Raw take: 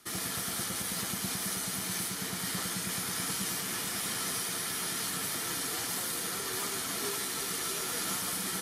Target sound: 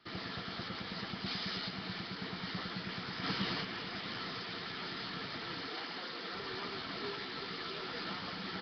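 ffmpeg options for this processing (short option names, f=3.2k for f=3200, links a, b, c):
-filter_complex "[0:a]asettb=1/sr,asplit=3[a][b][c];[a]atrim=end=1.264[d];[b]atrim=start=1.26:end=1.69,asetpts=PTS-STARTPTS,afade=t=in:d=0.004:c=qsin,afade=t=out:st=0.426:d=0.004:c=qsin,highshelf=f=2.5k:g=8[e];[c]atrim=start=1.686[f];[d][e]acrossfade=d=0.004:c1=hsin:c2=qsin[g];[g][f]acrossfade=d=0.004:c1=qsin:c2=hsin,asplit=3[h][i][j];[h]afade=t=out:st=3.23:d=0.02[k];[i]acontrast=31,afade=t=in:st=3.23:d=0.02,afade=t=out:st=3.63:d=0.02[l];[j]afade=t=in:st=3.63:d=0.02[m];[k][l][m]amix=inputs=3:normalize=0,asettb=1/sr,asplit=3[n][o][p];[n]atrim=end=5.664[q];[o]atrim=start=5.66:end=6.35,asetpts=PTS-STARTPTS,afade=t=in:d=0.004:c=qsin,afade=t=out:st=0.686:d=0.004:c=qsin,highpass=220[r];[p]atrim=start=6.346[s];[q][r]acrossfade=d=0.004:c1=hsin:c2=qsin[t];[t][s]acrossfade=d=0.004:c1=qsin:c2=hsin,volume=-3dB" -ar 11025 -c:a nellymoser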